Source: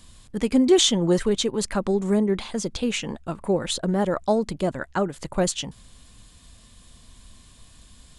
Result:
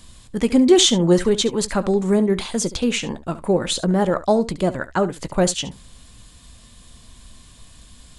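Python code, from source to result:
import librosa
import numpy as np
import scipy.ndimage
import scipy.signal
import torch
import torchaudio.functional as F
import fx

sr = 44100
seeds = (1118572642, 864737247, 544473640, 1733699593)

y = fx.high_shelf(x, sr, hz=7000.0, db=9.5, at=(2.3, 2.76))
y = fx.room_early_taps(y, sr, ms=(17, 70), db=(-15.5, -16.0))
y = y * librosa.db_to_amplitude(4.0)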